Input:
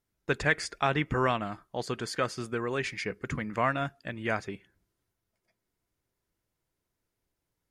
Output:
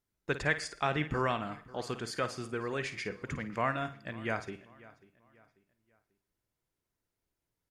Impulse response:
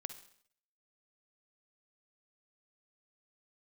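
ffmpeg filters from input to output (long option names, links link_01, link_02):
-filter_complex "[0:a]asplit=2[link_01][link_02];[link_02]adelay=541,lowpass=frequency=4500:poles=1,volume=-20.5dB,asplit=2[link_03][link_04];[link_04]adelay=541,lowpass=frequency=4500:poles=1,volume=0.38,asplit=2[link_05][link_06];[link_06]adelay=541,lowpass=frequency=4500:poles=1,volume=0.38[link_07];[link_01][link_03][link_05][link_07]amix=inputs=4:normalize=0,asplit=2[link_08][link_09];[1:a]atrim=start_sample=2205,adelay=53[link_10];[link_09][link_10]afir=irnorm=-1:irlink=0,volume=-9dB[link_11];[link_08][link_11]amix=inputs=2:normalize=0,volume=-4dB"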